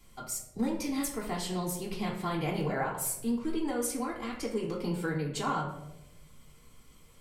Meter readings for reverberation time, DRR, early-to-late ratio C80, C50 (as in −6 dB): 0.90 s, −3.5 dB, 9.5 dB, 6.0 dB